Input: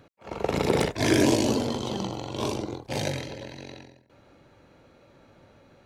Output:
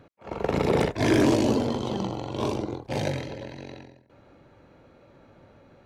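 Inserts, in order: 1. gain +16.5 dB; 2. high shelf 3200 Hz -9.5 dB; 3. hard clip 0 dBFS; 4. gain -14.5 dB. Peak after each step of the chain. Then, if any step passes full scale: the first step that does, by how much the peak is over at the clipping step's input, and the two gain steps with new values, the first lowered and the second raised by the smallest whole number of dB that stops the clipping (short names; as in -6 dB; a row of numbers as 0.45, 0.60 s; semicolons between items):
+9.5, +9.0, 0.0, -14.5 dBFS; step 1, 9.0 dB; step 1 +7.5 dB, step 4 -5.5 dB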